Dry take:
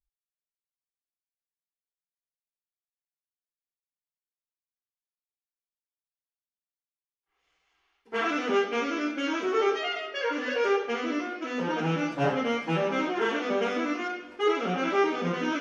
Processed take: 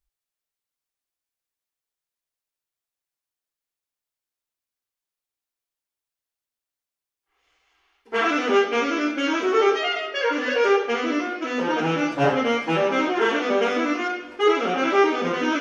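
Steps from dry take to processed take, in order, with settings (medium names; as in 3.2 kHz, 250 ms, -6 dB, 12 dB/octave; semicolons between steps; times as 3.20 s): peaking EQ 180 Hz -11.5 dB 0.34 oct; trim +6.5 dB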